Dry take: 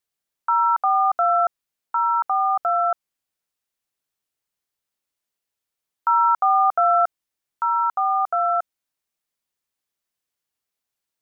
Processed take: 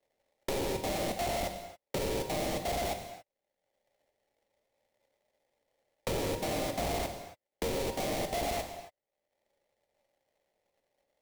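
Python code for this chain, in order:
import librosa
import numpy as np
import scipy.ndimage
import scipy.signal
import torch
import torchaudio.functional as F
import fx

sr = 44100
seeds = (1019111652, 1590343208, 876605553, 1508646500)

y = fx.wiener(x, sr, points=41)
y = fx.highpass_res(y, sr, hz=560.0, q=6.2)
y = fx.sample_hold(y, sr, seeds[0], rate_hz=1400.0, jitter_pct=20)
y = fx.peak_eq(y, sr, hz=990.0, db=-5.5, octaves=0.52)
y = np.clip(10.0 ** (26.0 / 20.0) * y, -1.0, 1.0) / 10.0 ** (26.0 / 20.0)
y = fx.rev_gated(y, sr, seeds[1], gate_ms=300, shape='falling', drr_db=5.5)
y = fx.dynamic_eq(y, sr, hz=1500.0, q=1.2, threshold_db=-46.0, ratio=4.0, max_db=-6)
y = fx.band_squash(y, sr, depth_pct=70)
y = F.gain(torch.from_numpy(y), -5.5).numpy()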